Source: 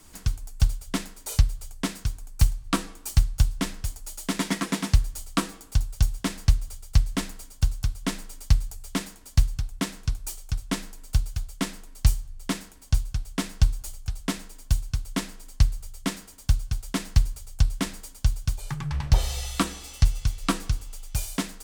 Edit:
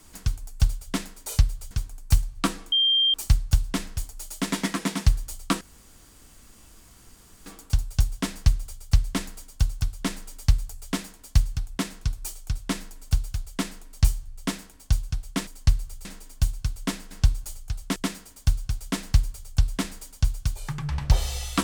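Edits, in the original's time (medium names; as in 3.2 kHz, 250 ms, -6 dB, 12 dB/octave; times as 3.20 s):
1.71–2.00 s: delete
3.01 s: add tone 3.18 kHz -17.5 dBFS 0.42 s
5.48 s: insert room tone 1.85 s
13.49–14.34 s: swap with 15.40–15.98 s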